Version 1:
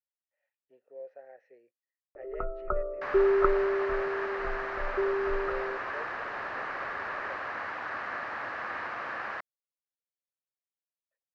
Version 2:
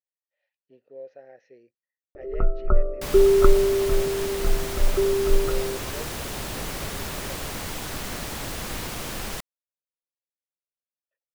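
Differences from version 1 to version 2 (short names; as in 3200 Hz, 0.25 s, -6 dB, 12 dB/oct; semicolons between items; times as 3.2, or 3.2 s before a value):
second sound: remove speaker cabinet 110–4600 Hz, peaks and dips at 170 Hz -6 dB, 430 Hz -5 dB, 1200 Hz +6 dB, 1700 Hz +9 dB, 3400 Hz -7 dB; master: remove three-band isolator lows -17 dB, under 450 Hz, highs -18 dB, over 2200 Hz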